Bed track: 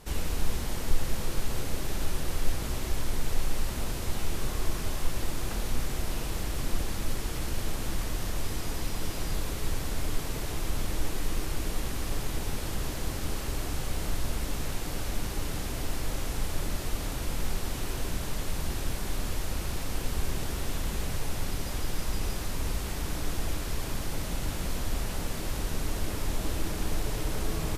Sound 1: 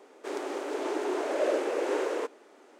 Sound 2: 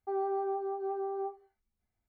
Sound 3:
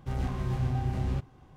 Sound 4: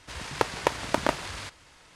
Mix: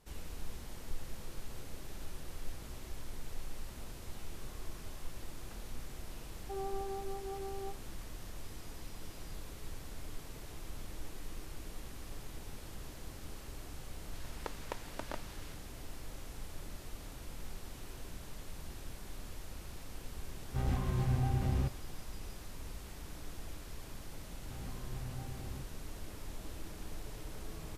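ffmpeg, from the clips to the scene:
ffmpeg -i bed.wav -i cue0.wav -i cue1.wav -i cue2.wav -i cue3.wav -filter_complex "[3:a]asplit=2[link_01][link_02];[0:a]volume=-14.5dB[link_03];[2:a]atrim=end=2.08,asetpts=PTS-STARTPTS,volume=-8dB,afade=type=in:duration=0.004:curve=hsin,afade=type=out:start_time=2.076:duration=0.004:curve=hsin,adelay=283122S[link_04];[4:a]atrim=end=1.95,asetpts=PTS-STARTPTS,volume=-18dB,afade=type=in:duration=0.004:curve=hsin,afade=type=out:start_time=1.946:duration=0.004:curve=hsin,adelay=14050[link_05];[link_01]atrim=end=1.56,asetpts=PTS-STARTPTS,volume=-2.5dB,afade=type=in:duration=0.004:curve=hsin,afade=type=out:start_time=1.556:duration=0.004:curve=hsin,adelay=20480[link_06];[link_02]atrim=end=1.56,asetpts=PTS-STARTPTS,volume=-15.5dB,afade=type=in:duration=0.004:curve=hsin,afade=type=out:start_time=1.556:duration=0.004:curve=hsin,adelay=24430[link_07];[link_03][link_04][link_05][link_06][link_07]amix=inputs=5:normalize=0" out.wav

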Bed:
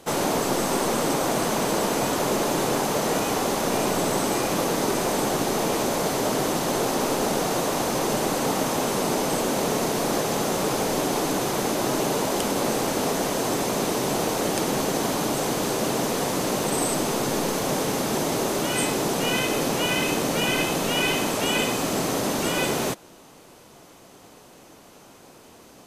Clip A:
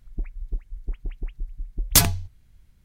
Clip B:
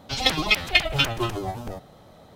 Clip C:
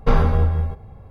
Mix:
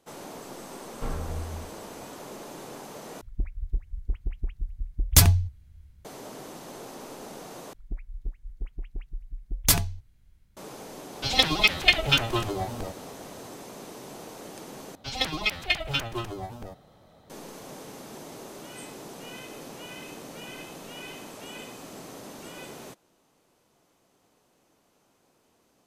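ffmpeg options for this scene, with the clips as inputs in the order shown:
ffmpeg -i bed.wav -i cue0.wav -i cue1.wav -i cue2.wav -filter_complex "[1:a]asplit=2[link_01][link_02];[2:a]asplit=2[link_03][link_04];[0:a]volume=-18dB[link_05];[link_01]equalizer=frequency=76:width=1.5:gain=13.5[link_06];[link_03]equalizer=frequency=3800:width=1.5:gain=2.5[link_07];[link_05]asplit=4[link_08][link_09][link_10][link_11];[link_08]atrim=end=3.214[link_12];[link_06]atrim=end=2.84,asetpts=PTS-STARTPTS,volume=-2.5dB[link_13];[link_09]atrim=start=6.046:end=7.734[link_14];[link_02]atrim=end=2.84,asetpts=PTS-STARTPTS,volume=-4.5dB[link_15];[link_10]atrim=start=10.566:end=14.954[link_16];[link_04]atrim=end=2.35,asetpts=PTS-STARTPTS,volume=-6.5dB[link_17];[link_11]atrim=start=17.296[link_18];[3:a]atrim=end=1.1,asetpts=PTS-STARTPTS,volume=-16.5dB,afade=type=in:duration=0.004:curve=hsin,afade=type=out:start_time=1.096:duration=0.004:curve=hsin,adelay=950[link_19];[link_07]atrim=end=2.35,asetpts=PTS-STARTPTS,volume=-1dB,afade=type=in:duration=0.004:curve=hsin,afade=type=out:start_time=2.346:duration=0.004:curve=hsin,adelay=11130[link_20];[link_12][link_13]acrossfade=duration=0.004:curve1=hsin:curve2=hsin[link_21];[link_21][link_14]acrossfade=duration=0.004:curve1=hsin:curve2=hsin[link_22];[link_22][link_15]acrossfade=duration=0.004:curve1=hsin:curve2=hsin[link_23];[link_23][link_16]acrossfade=duration=0.004:curve1=hsin:curve2=hsin[link_24];[link_24][link_17]acrossfade=duration=0.004:curve1=hsin:curve2=hsin[link_25];[link_25][link_18]acrossfade=duration=0.004:curve1=hsin:curve2=hsin[link_26];[link_26][link_19][link_20]amix=inputs=3:normalize=0" out.wav

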